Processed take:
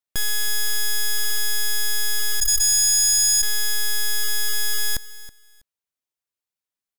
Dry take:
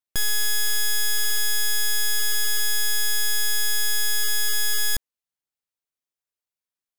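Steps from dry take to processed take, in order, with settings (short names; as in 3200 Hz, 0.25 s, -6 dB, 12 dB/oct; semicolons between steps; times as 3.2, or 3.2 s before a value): 2.4–3.43 formant sharpening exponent 3; feedback echo 0.324 s, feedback 20%, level -17.5 dB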